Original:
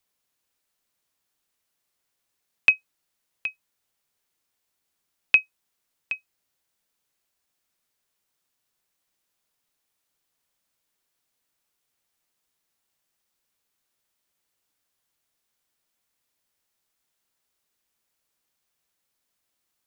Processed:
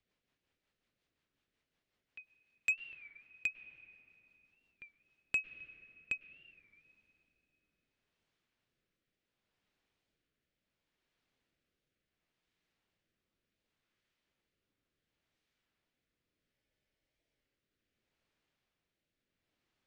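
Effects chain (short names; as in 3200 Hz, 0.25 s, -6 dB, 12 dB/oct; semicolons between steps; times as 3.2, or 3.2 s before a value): LPF 2500 Hz 12 dB/oct; bell 1000 Hz -7.5 dB 1.8 oct; in parallel at 0 dB: compressor, threshold -27 dBFS, peak gain reduction 9.5 dB; on the sum: rotary speaker horn 5.5 Hz, later 0.7 Hz, at 4.69; limiter -16.5 dBFS, peak gain reduction 11.5 dB; reverse echo 0.508 s -23 dB; on a send at -15 dB: reverb RT60 3.5 s, pre-delay 99 ms; on the sum: soft clip -23.5 dBFS, distortion -15 dB; spectral freeze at 16.56, 1.00 s; record warp 33 1/3 rpm, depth 160 cents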